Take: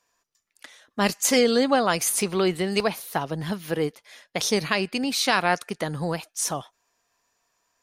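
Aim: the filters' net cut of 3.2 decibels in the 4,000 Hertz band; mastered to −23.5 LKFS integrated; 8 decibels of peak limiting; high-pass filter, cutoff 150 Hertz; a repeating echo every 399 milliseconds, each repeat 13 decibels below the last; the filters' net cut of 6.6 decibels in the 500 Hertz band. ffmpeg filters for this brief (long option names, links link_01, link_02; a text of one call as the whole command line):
ffmpeg -i in.wav -af "highpass=150,equalizer=frequency=500:width_type=o:gain=-8,equalizer=frequency=4000:width_type=o:gain=-4,alimiter=limit=-16dB:level=0:latency=1,aecho=1:1:399|798|1197:0.224|0.0493|0.0108,volume=5dB" out.wav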